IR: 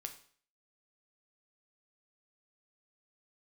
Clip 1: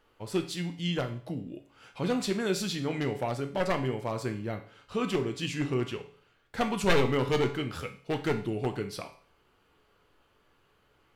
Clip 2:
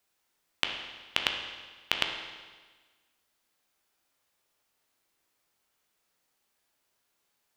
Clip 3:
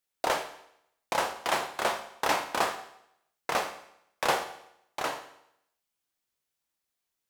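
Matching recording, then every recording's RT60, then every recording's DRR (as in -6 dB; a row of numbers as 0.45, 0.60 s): 1; 0.50, 1.4, 0.75 s; 5.5, 2.5, 6.5 dB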